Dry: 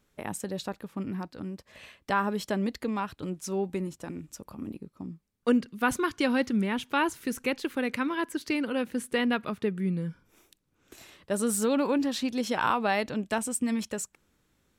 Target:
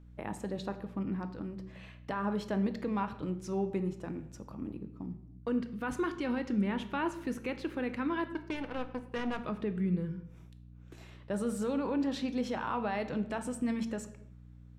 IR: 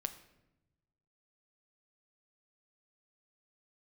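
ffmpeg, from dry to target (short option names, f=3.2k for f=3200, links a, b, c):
-filter_complex "[0:a]asettb=1/sr,asplit=3[a][b][c];[a]atrim=end=8.284[d];[b]atrim=start=8.28:end=9.38,asetpts=PTS-STARTPTS,afade=t=in:d=0.004:c=qsin,afade=t=out:st=1.096:d=0.004:c=qsin,aeval=exprs='0.178*(cos(1*acos(clip(val(0)/0.178,-1,1)))-cos(1*PI/2))+0.0158*(cos(3*acos(clip(val(0)/0.178,-1,1)))-cos(3*PI/2))+0.0178*(cos(7*acos(clip(val(0)/0.178,-1,1)))-cos(7*PI/2))':c=same[e];[c]atrim=start=9.376[f];[d][e]acrossfade=d=0.004:c1=hsin:c2=qsin[g];[g][f]acrossfade=d=0.004:c1=qsin:c2=hsin,alimiter=limit=-22dB:level=0:latency=1:release=55,aemphasis=mode=reproduction:type=75kf,aeval=exprs='val(0)+0.00282*(sin(2*PI*60*n/s)+sin(2*PI*2*60*n/s)/2+sin(2*PI*3*60*n/s)/3+sin(2*PI*4*60*n/s)/4+sin(2*PI*5*60*n/s)/5)':c=same[h];[1:a]atrim=start_sample=2205,afade=t=out:st=0.44:d=0.01,atrim=end_sample=19845,asetrate=48510,aresample=44100[i];[h][i]afir=irnorm=-1:irlink=0"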